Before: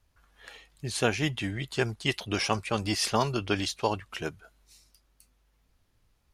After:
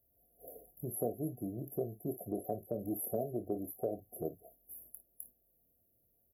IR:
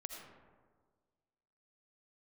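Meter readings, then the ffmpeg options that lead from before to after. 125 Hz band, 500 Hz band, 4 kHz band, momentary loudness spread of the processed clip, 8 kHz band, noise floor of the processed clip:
−11.5 dB, −6.0 dB, below −40 dB, 16 LU, −11.5 dB, −75 dBFS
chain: -filter_complex "[0:a]aemphasis=mode=production:type=50kf,agate=range=-8dB:threshold=-57dB:ratio=16:detection=peak,afftfilt=real='re*(1-between(b*sr/4096,750,11000))':imag='im*(1-between(b*sr/4096,750,11000))':win_size=4096:overlap=0.75,highpass=frequency=310:poles=1,acompressor=threshold=-51dB:ratio=2,asplit=2[link_01][link_02];[link_02]aecho=0:1:25|54:0.316|0.168[link_03];[link_01][link_03]amix=inputs=2:normalize=0,volume=7.5dB"

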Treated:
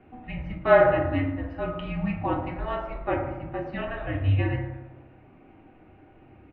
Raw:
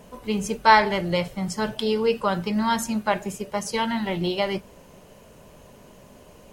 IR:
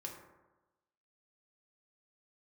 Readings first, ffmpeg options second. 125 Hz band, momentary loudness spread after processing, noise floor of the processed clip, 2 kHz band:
+5.5 dB, 15 LU, −54 dBFS, −4.5 dB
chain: -filter_complex "[0:a]asplit=5[link_01][link_02][link_03][link_04][link_05];[link_02]adelay=115,afreqshift=-96,volume=-21.5dB[link_06];[link_03]adelay=230,afreqshift=-192,volume=-26.5dB[link_07];[link_04]adelay=345,afreqshift=-288,volume=-31.6dB[link_08];[link_05]adelay=460,afreqshift=-384,volume=-36.6dB[link_09];[link_01][link_06][link_07][link_08][link_09]amix=inputs=5:normalize=0[link_10];[1:a]atrim=start_sample=2205[link_11];[link_10][link_11]afir=irnorm=-1:irlink=0,highpass=frequency=240:width_type=q:width=0.5412,highpass=frequency=240:width_type=q:width=1.307,lowpass=frequency=2900:width_type=q:width=0.5176,lowpass=frequency=2900:width_type=q:width=0.7071,lowpass=frequency=2900:width_type=q:width=1.932,afreqshift=-260"

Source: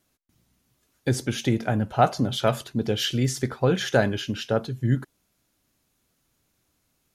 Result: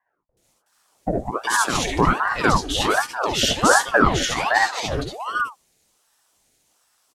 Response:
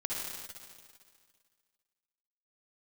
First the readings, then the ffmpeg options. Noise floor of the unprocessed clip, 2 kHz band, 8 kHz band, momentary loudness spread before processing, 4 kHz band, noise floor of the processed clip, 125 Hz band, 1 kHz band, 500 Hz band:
−72 dBFS, +12.5 dB, +10.5 dB, 6 LU, +6.5 dB, −73 dBFS, −4.0 dB, +9.0 dB, +1.5 dB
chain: -filter_complex "[0:a]equalizer=frequency=500:width_type=o:width=1:gain=11,equalizer=frequency=1000:width_type=o:width=1:gain=-5,equalizer=frequency=2000:width_type=o:width=1:gain=6,equalizer=frequency=4000:width_type=o:width=1:gain=4,equalizer=frequency=8000:width_type=o:width=1:gain=12,acrossover=split=170|1000[link_01][link_02][link_03];[link_03]adelay=370[link_04];[link_01]adelay=430[link_05];[link_05][link_02][link_04]amix=inputs=3:normalize=0[link_06];[1:a]atrim=start_sample=2205,afade=type=out:start_time=0.14:duration=0.01,atrim=end_sample=6615[link_07];[link_06][link_07]afir=irnorm=-1:irlink=0,aeval=exprs='val(0)*sin(2*PI*750*n/s+750*0.8/1.3*sin(2*PI*1.3*n/s))':channel_layout=same,volume=2dB"

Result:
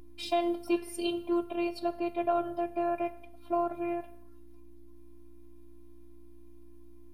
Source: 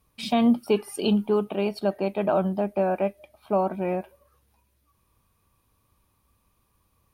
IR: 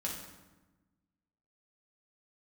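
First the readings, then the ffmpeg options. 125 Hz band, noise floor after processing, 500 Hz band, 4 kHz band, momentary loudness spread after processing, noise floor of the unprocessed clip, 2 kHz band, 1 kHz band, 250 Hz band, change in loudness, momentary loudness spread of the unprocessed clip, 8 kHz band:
−20.0 dB, −48 dBFS, −7.5 dB, −5.5 dB, 5 LU, −70 dBFS, −5.5 dB, −3.5 dB, −7.5 dB, −7.0 dB, 7 LU, can't be measured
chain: -filter_complex "[0:a]asplit=2[link_01][link_02];[1:a]atrim=start_sample=2205,afade=type=out:start_time=0.31:duration=0.01,atrim=end_sample=14112,lowshelf=frequency=200:gain=-11[link_03];[link_02][link_03]afir=irnorm=-1:irlink=0,volume=-11.5dB[link_04];[link_01][link_04]amix=inputs=2:normalize=0,aeval=exprs='val(0)+0.01*(sin(2*PI*60*n/s)+sin(2*PI*2*60*n/s)/2+sin(2*PI*3*60*n/s)/3+sin(2*PI*4*60*n/s)/4+sin(2*PI*5*60*n/s)/5)':channel_layout=same,afftfilt=real='hypot(re,im)*cos(PI*b)':imag='0':win_size=512:overlap=0.75,volume=-3dB"

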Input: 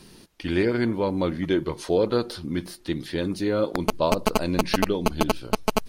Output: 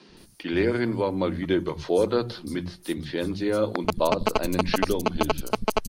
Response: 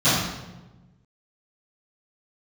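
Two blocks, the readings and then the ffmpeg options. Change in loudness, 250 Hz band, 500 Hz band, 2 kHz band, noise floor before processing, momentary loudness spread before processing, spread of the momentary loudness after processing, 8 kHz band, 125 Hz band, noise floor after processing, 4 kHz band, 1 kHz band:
−0.5 dB, −1.5 dB, 0.0 dB, 0.0 dB, −50 dBFS, 8 LU, 9 LU, −2.5 dB, −1.5 dB, −52 dBFS, −1.0 dB, 0.0 dB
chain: -filter_complex "[0:a]acrossover=split=180|5800[link_01][link_02][link_03];[link_01]adelay=90[link_04];[link_03]adelay=170[link_05];[link_04][link_02][link_05]amix=inputs=3:normalize=0"

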